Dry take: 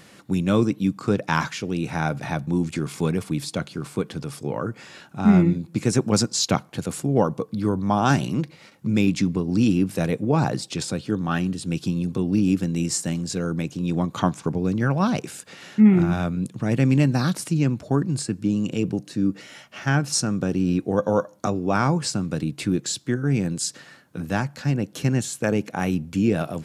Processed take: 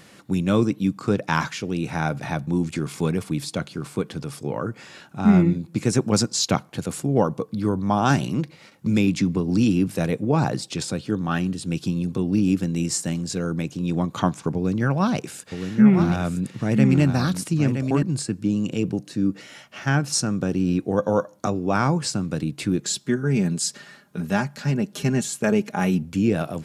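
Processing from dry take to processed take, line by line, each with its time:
8.86–9.88 three-band squash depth 40%
14.55–18.03 echo 0.968 s -7 dB
22.8–26.03 comb 4.9 ms

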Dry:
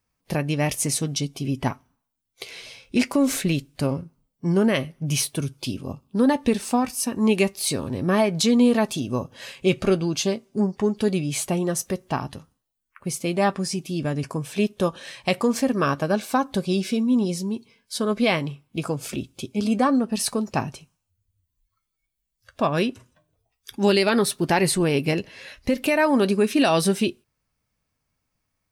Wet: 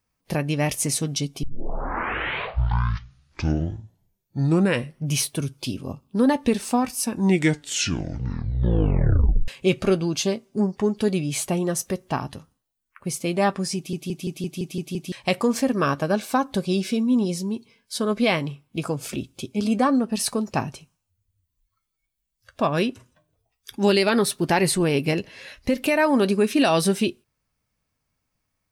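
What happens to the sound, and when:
1.43 tape start 3.68 s
6.98 tape stop 2.50 s
13.76 stutter in place 0.17 s, 8 plays

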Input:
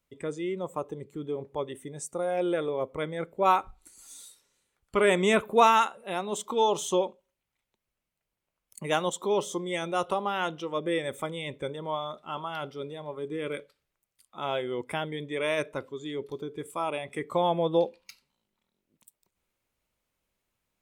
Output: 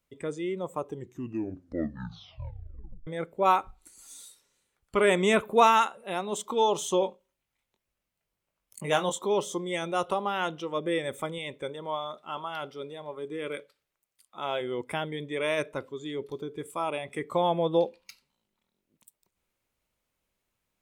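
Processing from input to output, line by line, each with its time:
0.84 tape stop 2.23 s
7–9.23 doubler 21 ms -6 dB
11.38–14.61 low shelf 200 Hz -8.5 dB

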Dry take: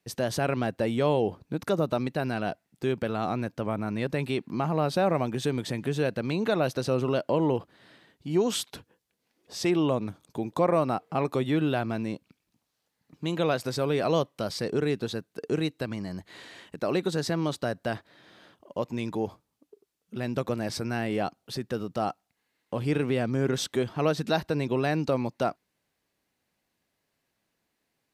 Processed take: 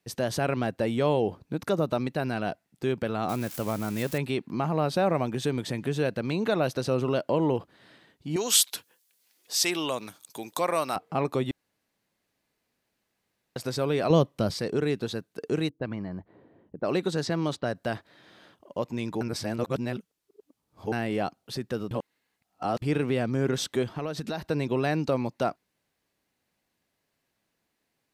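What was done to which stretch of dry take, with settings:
3.29–4.18 switching spikes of -28 dBFS
8.36–10.96 tilt +4.5 dB/oct
11.51–13.56 room tone
14.1–14.54 low shelf 350 Hz +10 dB
15.69–17.75 low-pass opened by the level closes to 300 Hz, open at -23 dBFS
19.21–20.92 reverse
21.91–22.82 reverse
23.91–24.49 compressor, threshold -28 dBFS

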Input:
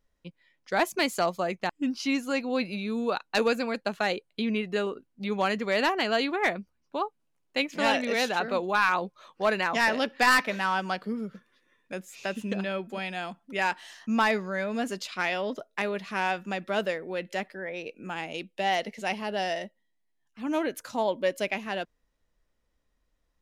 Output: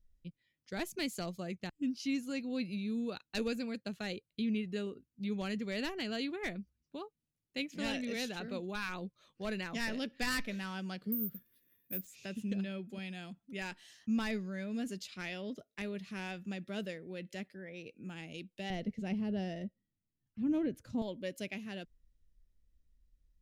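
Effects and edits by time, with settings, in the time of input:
11.12–12.07 careless resampling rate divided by 3×, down none, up zero stuff
18.7–21.02 tilt -3.5 dB/oct
whole clip: passive tone stack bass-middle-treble 10-0-1; gain +12.5 dB

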